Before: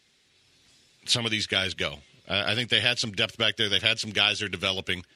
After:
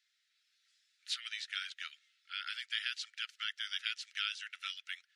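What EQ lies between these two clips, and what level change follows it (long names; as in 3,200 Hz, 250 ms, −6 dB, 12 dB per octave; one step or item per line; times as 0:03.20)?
Chebyshev high-pass with heavy ripple 1,300 Hz, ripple 3 dB
spectral tilt −2 dB per octave
−9.0 dB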